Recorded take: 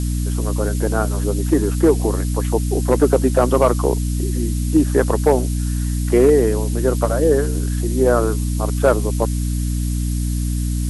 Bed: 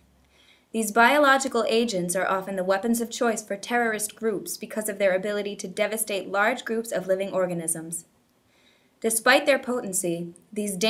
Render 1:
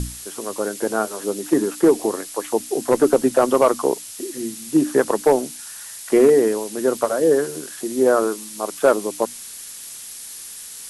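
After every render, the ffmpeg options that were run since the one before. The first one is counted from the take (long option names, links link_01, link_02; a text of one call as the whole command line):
ffmpeg -i in.wav -af "bandreject=frequency=60:width_type=h:width=6,bandreject=frequency=120:width_type=h:width=6,bandreject=frequency=180:width_type=h:width=6,bandreject=frequency=240:width_type=h:width=6,bandreject=frequency=300:width_type=h:width=6" out.wav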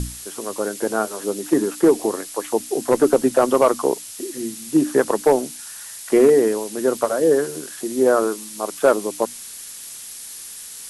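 ffmpeg -i in.wav -af anull out.wav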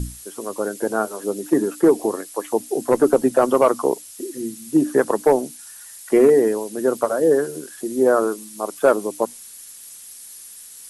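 ffmpeg -i in.wav -af "afftdn=noise_reduction=8:noise_floor=-36" out.wav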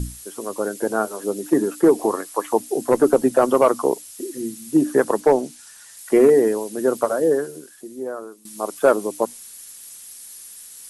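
ffmpeg -i in.wav -filter_complex "[0:a]asettb=1/sr,asplit=3[link_01][link_02][link_03];[link_01]atrim=end=1.984[link_04];[link_02]atrim=start=1.98:end=2.6,asetpts=PTS-STARTPTS,afade=type=in:duration=0.004:curve=qsin,afade=type=out:start_time=0.616:duration=0.004:curve=qsin,equalizer=frequency=1100:width=1.3:gain=7.5[link_05];[link_03]atrim=start=2.596[link_06];[link_04][link_05]acrossfade=duration=0.004:curve1=hsin:curve2=qsin[link_07];[link_07][link_06]acrossfade=duration=0.004:curve1=qsin:curve2=hsin,asettb=1/sr,asplit=3[link_08][link_09][link_10];[link_08]atrim=end=5.204[link_11];[link_09]atrim=start=5.2:end=5.97,asetpts=PTS-STARTPTS,afade=type=in:duration=0.004:curve=qsin,afade=type=out:start_time=0.766:duration=0.004:curve=qsin,acrossover=split=8900[link_12][link_13];[link_13]acompressor=threshold=-54dB:ratio=4:attack=1:release=60[link_14];[link_12][link_14]amix=inputs=2:normalize=0[link_15];[link_10]atrim=start=5.966[link_16];[link_11][link_15]acrossfade=duration=0.004:curve1=hsin:curve2=qsin[link_17];[link_17][link_16]acrossfade=duration=0.004:curve1=qsin:curve2=hsin,asplit=2[link_18][link_19];[link_18]atrim=end=8.45,asetpts=PTS-STARTPTS,afade=type=out:start_time=7.12:duration=1.33:curve=qua:silence=0.149624[link_20];[link_19]atrim=start=8.45,asetpts=PTS-STARTPTS,afade=type=in:duration=0.004:curve=hsin:silence=0.149624[link_21];[link_20][link_21]concat=n=2:v=0:a=1" out.wav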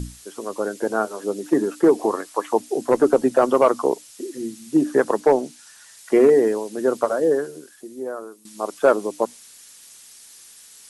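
ffmpeg -i in.wav -filter_complex "[0:a]acrossover=split=8000[link_01][link_02];[link_02]acompressor=threshold=-54dB:ratio=4:attack=1:release=60[link_03];[link_01][link_03]amix=inputs=2:normalize=0,lowshelf=frequency=160:gain=-5" out.wav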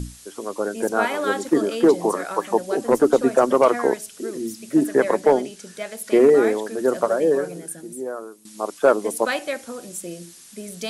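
ffmpeg -i in.wav -i bed.wav -filter_complex "[1:a]volume=-7dB[link_01];[0:a][link_01]amix=inputs=2:normalize=0" out.wav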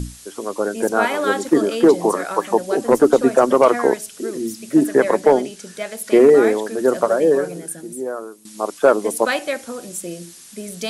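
ffmpeg -i in.wav -af "volume=3.5dB,alimiter=limit=-3dB:level=0:latency=1" out.wav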